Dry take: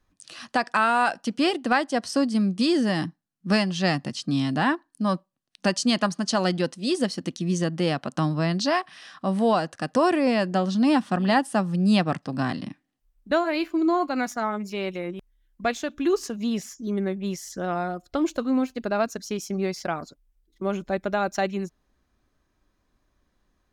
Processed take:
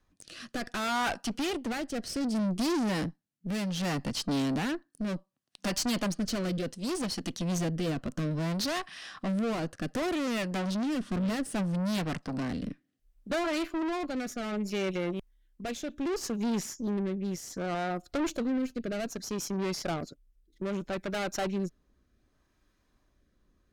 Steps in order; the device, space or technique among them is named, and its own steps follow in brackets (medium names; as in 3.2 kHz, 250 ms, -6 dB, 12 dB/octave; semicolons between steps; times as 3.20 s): overdriven rotary cabinet (valve stage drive 31 dB, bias 0.55; rotary cabinet horn 0.65 Hz); trim +4.5 dB